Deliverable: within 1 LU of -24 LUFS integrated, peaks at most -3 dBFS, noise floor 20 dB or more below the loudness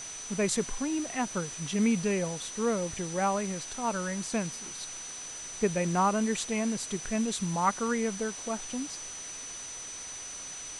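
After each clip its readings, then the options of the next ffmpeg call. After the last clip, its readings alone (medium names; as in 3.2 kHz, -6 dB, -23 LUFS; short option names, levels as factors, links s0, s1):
steady tone 6 kHz; tone level -40 dBFS; noise floor -41 dBFS; noise floor target -52 dBFS; loudness -31.5 LUFS; peak level -13.5 dBFS; loudness target -24.0 LUFS
-> -af "bandreject=f=6000:w=30"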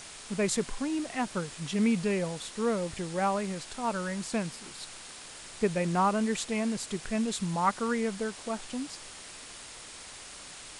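steady tone not found; noise floor -46 dBFS; noise floor target -51 dBFS
-> -af "afftdn=nr=6:nf=-46"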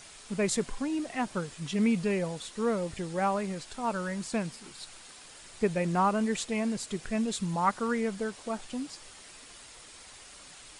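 noise floor -51 dBFS; loudness -31.0 LUFS; peak level -14.0 dBFS; loudness target -24.0 LUFS
-> -af "volume=2.24"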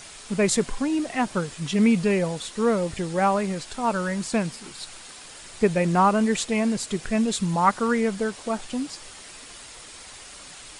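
loudness -24.0 LUFS; peak level -7.0 dBFS; noise floor -44 dBFS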